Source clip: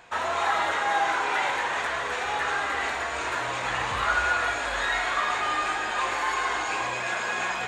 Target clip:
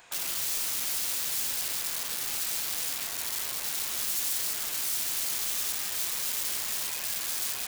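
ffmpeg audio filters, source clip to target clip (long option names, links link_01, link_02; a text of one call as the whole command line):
ffmpeg -i in.wav -af "aeval=exprs='(mod(17.8*val(0)+1,2)-1)/17.8':channel_layout=same,crystalizer=i=4:c=0,alimiter=limit=-12.5dB:level=0:latency=1,volume=-7dB" out.wav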